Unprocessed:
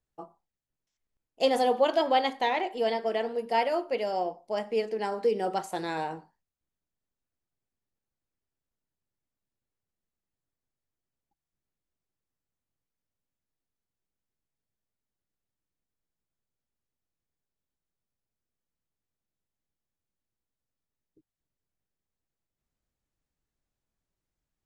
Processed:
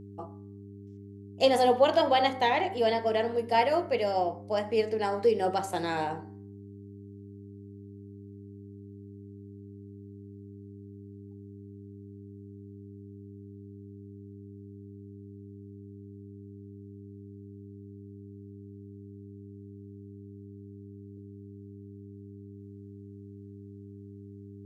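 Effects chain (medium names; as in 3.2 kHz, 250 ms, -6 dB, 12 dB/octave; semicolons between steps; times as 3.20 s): de-hum 64.56 Hz, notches 35; mains buzz 100 Hz, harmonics 4, -48 dBFS -3 dB/octave; trim +2 dB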